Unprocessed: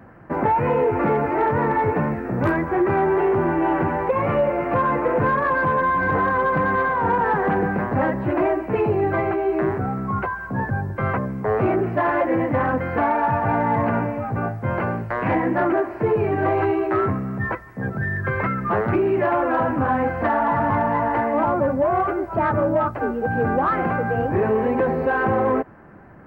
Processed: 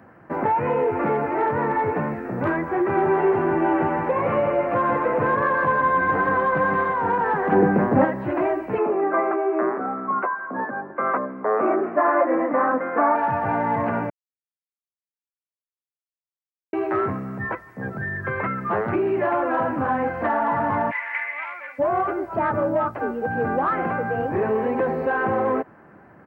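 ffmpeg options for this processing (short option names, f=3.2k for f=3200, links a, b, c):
-filter_complex "[0:a]asplit=3[a][b][c];[a]afade=t=out:st=2.94:d=0.02[d];[b]aecho=1:1:163:0.596,afade=t=in:st=2.94:d=0.02,afade=t=out:st=6.93:d=0.02[e];[c]afade=t=in:st=6.93:d=0.02[f];[d][e][f]amix=inputs=3:normalize=0,asettb=1/sr,asplit=3[g][h][i];[g]atrim=end=7.524[j];[h]atrim=start=7.52:end=8.05,asetpts=PTS-STARTPTS,afade=t=in:d=0.004:c=qsin,afade=t=out:st=0.526:d=0.004:c=qsin,equalizer=f=270:w=0.43:g=9.5[k];[i]atrim=start=8.046[l];[j][k]acrossfade=d=0.004:c1=hsin:c2=qsin[m];[m][l]acrossfade=d=0.004:c1=qsin:c2=hsin,asettb=1/sr,asplit=3[n][o][p];[n]atrim=end=8.784[q];[o]atrim=start=8.78:end=13.16,asetpts=PTS-STARTPTS,afade=t=in:d=0.004:c=qsin,afade=t=out:st=4.376:d=0.004:c=qsin,highpass=f=230:w=0.5412,highpass=f=230:w=1.3066,equalizer=f=270:t=q:w=4:g=4,equalizer=f=600:t=q:w=4:g=5,equalizer=f=1.2k:t=q:w=4:g=9,lowpass=f=2.2k:w=0.5412,lowpass=f=2.2k:w=1.3066[r];[p]atrim=start=13.156[s];[q][r]acrossfade=d=0.004:c1=hsin:c2=qsin[t];[t][s]acrossfade=d=0.004:c1=qsin:c2=hsin,asplit=3[u][v][w];[u]afade=t=out:st=20.9:d=0.02[x];[v]highpass=f=2.2k:t=q:w=8.8,afade=t=in:st=20.9:d=0.02,afade=t=out:st=21.78:d=0.02[y];[w]afade=t=in:st=21.78:d=0.02[z];[x][y][z]amix=inputs=3:normalize=0,asplit=3[aa][ab][ac];[aa]atrim=end=14.1,asetpts=PTS-STARTPTS,afade=t=out:st=14.096:d=0.004:c=hsin[ad];[ab]atrim=start=14.1:end=16.73,asetpts=PTS-STARTPTS,volume=0[ae];[ac]atrim=start=16.73,asetpts=PTS-STARTPTS,afade=t=in:d=0.004:c=hsin[af];[ad][ae][af]concat=n=3:v=0:a=1,acrossover=split=3300[ag][ah];[ah]acompressor=threshold=-56dB:ratio=4:attack=1:release=60[ai];[ag][ai]amix=inputs=2:normalize=0,highpass=f=180:p=1,volume=-1.5dB"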